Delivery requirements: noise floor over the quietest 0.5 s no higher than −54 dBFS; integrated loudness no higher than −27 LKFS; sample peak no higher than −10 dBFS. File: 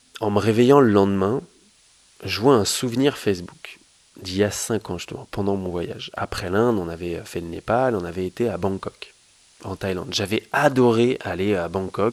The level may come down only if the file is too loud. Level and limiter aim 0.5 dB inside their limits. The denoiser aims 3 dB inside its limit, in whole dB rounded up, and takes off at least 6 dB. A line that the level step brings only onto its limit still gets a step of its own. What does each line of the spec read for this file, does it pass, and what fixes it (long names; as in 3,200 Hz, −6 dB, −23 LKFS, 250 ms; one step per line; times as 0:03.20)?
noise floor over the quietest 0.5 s −56 dBFS: in spec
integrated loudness −22.0 LKFS: out of spec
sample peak −2.0 dBFS: out of spec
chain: level −5.5 dB
brickwall limiter −10.5 dBFS